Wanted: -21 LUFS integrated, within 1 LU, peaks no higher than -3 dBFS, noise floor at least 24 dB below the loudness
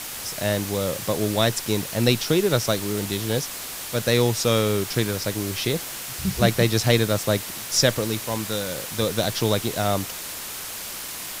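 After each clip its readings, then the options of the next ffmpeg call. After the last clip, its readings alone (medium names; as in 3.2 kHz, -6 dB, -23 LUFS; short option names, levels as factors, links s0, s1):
noise floor -34 dBFS; noise floor target -48 dBFS; loudness -23.5 LUFS; peak level -3.5 dBFS; loudness target -21.0 LUFS
-> -af "afftdn=nr=14:nf=-34"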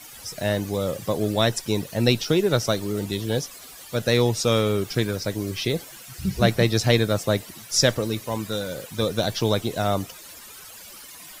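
noise floor -43 dBFS; noise floor target -48 dBFS
-> -af "afftdn=nr=6:nf=-43"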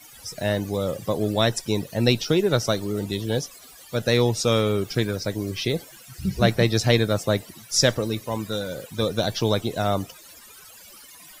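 noise floor -47 dBFS; noise floor target -48 dBFS
-> -af "afftdn=nr=6:nf=-47"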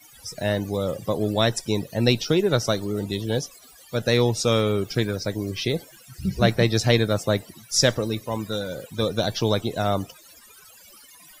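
noise floor -50 dBFS; loudness -24.0 LUFS; peak level -4.0 dBFS; loudness target -21.0 LUFS
-> -af "volume=1.41,alimiter=limit=0.708:level=0:latency=1"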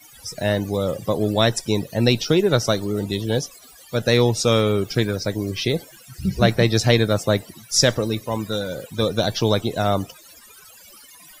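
loudness -21.0 LUFS; peak level -3.0 dBFS; noise floor -47 dBFS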